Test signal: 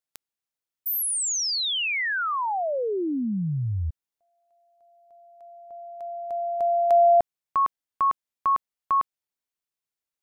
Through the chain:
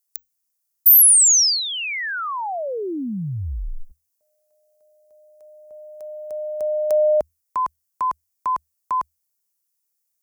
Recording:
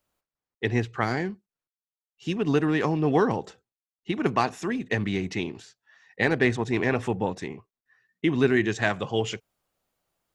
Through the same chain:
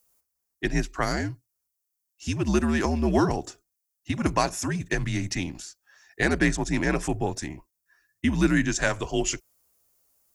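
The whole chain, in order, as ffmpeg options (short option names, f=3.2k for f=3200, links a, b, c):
-af "afreqshift=-80,aexciter=amount=5.1:drive=4.1:freq=5k"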